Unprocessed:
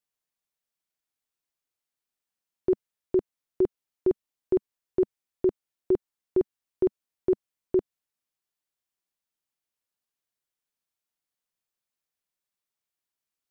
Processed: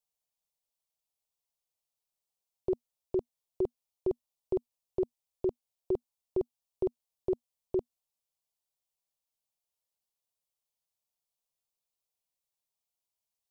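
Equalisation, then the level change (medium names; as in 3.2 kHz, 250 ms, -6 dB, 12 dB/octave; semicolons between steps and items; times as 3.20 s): peaking EQ 240 Hz +7.5 dB 0.21 oct; static phaser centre 670 Hz, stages 4; 0.0 dB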